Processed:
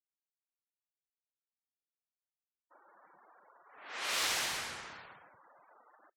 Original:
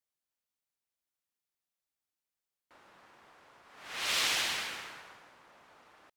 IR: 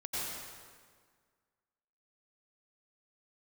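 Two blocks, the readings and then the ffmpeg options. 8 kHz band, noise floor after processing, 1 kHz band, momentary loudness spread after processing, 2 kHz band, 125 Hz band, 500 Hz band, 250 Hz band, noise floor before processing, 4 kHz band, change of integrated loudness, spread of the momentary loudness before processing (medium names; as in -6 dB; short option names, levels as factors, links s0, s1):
-1.0 dB, under -85 dBFS, -0.5 dB, 20 LU, -3.0 dB, -1.0 dB, -0.5 dB, -2.0 dB, under -85 dBFS, -4.5 dB, -3.5 dB, 18 LU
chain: -filter_complex "[0:a]afftfilt=real='re*gte(hypot(re,im),0.00224)':imag='im*gte(hypot(re,im),0.00224)':win_size=1024:overlap=0.75,adynamicequalizer=threshold=0.00501:dfrequency=3500:dqfactor=0.82:tfrequency=3500:tqfactor=0.82:attack=5:release=100:ratio=0.375:range=2.5:mode=cutabove:tftype=bell,acrossover=split=230|2900[s0][s1][s2];[s2]adelay=40[s3];[s0]adelay=190[s4];[s4][s1][s3]amix=inputs=3:normalize=0"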